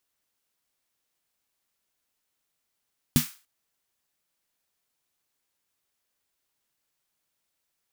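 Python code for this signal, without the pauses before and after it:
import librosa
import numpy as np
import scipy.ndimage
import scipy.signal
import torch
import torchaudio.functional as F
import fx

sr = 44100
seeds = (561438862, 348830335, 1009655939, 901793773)

y = fx.drum_snare(sr, seeds[0], length_s=0.29, hz=150.0, second_hz=240.0, noise_db=-7.5, noise_from_hz=1100.0, decay_s=0.13, noise_decay_s=0.35)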